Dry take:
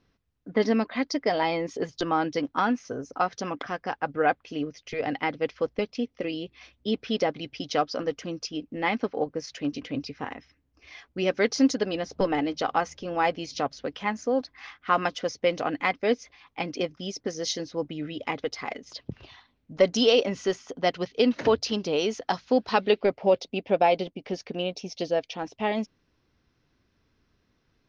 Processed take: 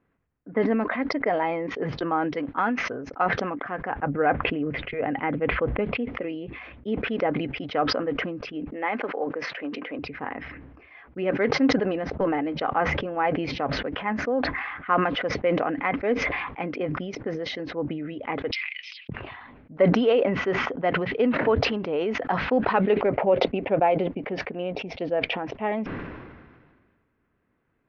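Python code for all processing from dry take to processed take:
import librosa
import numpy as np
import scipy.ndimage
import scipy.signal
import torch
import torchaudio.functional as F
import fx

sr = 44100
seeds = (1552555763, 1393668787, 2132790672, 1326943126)

y = fx.chain(x, sr, fx.high_shelf(hz=2700.0, db=8.5),
    fx.upward_expand(threshold_db=-35.0, expansion=1.5), at=(2.35, 3.26))
y = fx.chain(y, sr, fx.lowpass(hz=3800.0, slope=24),
    fx.low_shelf(hz=220.0, db=6.5), at=(3.9, 5.98))
y = fx.chain(y, sr, fx.highpass(hz=370.0, slope=12),
    fx.band_squash(depth_pct=40), at=(8.72, 9.99))
y = fx.chain(y, sr, fx.ellip_bandpass(low_hz=2400.0, high_hz=5500.0, order=3, stop_db=80),
    fx.band_squash(depth_pct=40), at=(18.51, 19.09))
y = scipy.signal.sosfilt(scipy.signal.butter(4, 2200.0, 'lowpass', fs=sr, output='sos'), y)
y = fx.low_shelf(y, sr, hz=94.0, db=-10.0)
y = fx.sustainer(y, sr, db_per_s=35.0)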